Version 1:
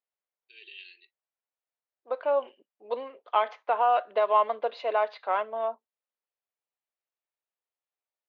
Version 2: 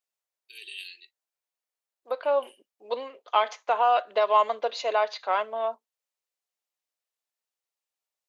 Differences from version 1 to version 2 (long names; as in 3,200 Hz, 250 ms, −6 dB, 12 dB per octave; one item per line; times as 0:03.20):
first voice: remove Butterworth low-pass 7,700 Hz
master: remove high-frequency loss of the air 350 metres